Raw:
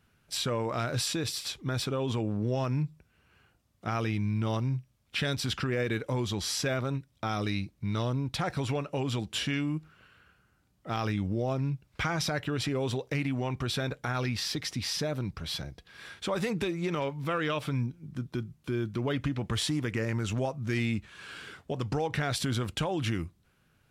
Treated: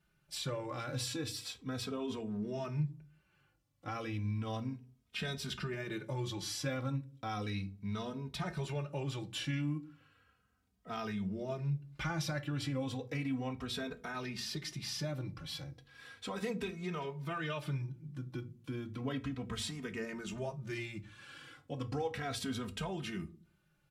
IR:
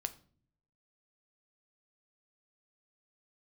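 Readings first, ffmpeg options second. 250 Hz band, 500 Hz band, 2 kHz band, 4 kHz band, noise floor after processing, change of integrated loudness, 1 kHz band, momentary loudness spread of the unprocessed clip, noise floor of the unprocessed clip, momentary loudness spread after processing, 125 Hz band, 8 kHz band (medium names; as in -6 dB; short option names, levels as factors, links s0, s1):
-7.0 dB, -8.0 dB, -8.0 dB, -8.0 dB, -75 dBFS, -7.5 dB, -7.5 dB, 6 LU, -69 dBFS, 8 LU, -7.5 dB, -8.0 dB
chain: -filter_complex "[1:a]atrim=start_sample=2205,asetrate=70560,aresample=44100[s0];[0:a][s0]afir=irnorm=-1:irlink=0,asplit=2[s1][s2];[s2]adelay=2.9,afreqshift=-0.34[s3];[s1][s3]amix=inputs=2:normalize=1"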